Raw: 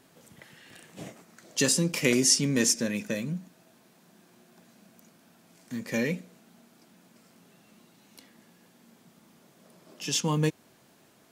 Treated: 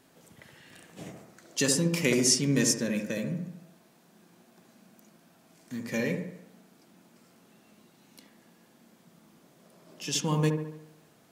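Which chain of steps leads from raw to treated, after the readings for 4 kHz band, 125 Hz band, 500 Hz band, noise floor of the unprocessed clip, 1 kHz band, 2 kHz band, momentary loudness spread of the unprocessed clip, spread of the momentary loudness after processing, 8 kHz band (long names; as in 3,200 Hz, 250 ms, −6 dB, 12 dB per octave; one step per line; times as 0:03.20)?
−2.0 dB, +1.0 dB, 0.0 dB, −61 dBFS, −0.5 dB, −1.5 dB, 18 LU, 20 LU, −2.0 dB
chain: delay with a low-pass on its return 71 ms, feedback 53%, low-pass 1,400 Hz, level −4 dB
level −2 dB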